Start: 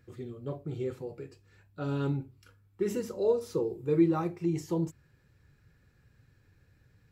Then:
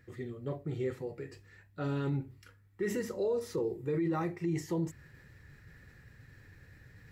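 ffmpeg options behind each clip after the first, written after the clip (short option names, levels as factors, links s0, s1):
-af "equalizer=f=1900:w=6.1:g=13.5,areverse,acompressor=mode=upward:threshold=0.00501:ratio=2.5,areverse,alimiter=level_in=1.12:limit=0.0631:level=0:latency=1:release=20,volume=0.891"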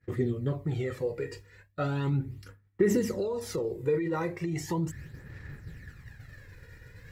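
-af "agate=range=0.0224:threshold=0.00251:ratio=3:detection=peak,acompressor=threshold=0.0224:ratio=6,aphaser=in_gain=1:out_gain=1:delay=2.1:decay=0.55:speed=0.37:type=sinusoidal,volume=2.24"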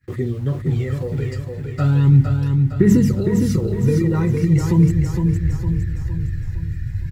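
-filter_complex "[0:a]asubboost=boost=11:cutoff=180,acrossover=split=320|1100[s0][s1][s2];[s1]aeval=exprs='val(0)*gte(abs(val(0)),0.00335)':c=same[s3];[s0][s3][s2]amix=inputs=3:normalize=0,aecho=1:1:460|920|1380|1840|2300|2760:0.562|0.27|0.13|0.0622|0.0299|0.0143,volume=1.78"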